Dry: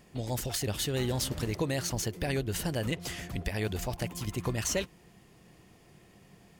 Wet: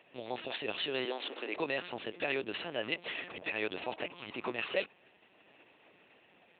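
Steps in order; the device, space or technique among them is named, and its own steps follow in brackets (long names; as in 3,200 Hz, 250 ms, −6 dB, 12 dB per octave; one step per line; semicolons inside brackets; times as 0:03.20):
talking toy (linear-prediction vocoder at 8 kHz pitch kept; high-pass filter 380 Hz 12 dB per octave; parametric band 2,600 Hz +8 dB 0.27 octaves)
0:01.05–0:01.56: high-pass filter 280 Hz 24 dB per octave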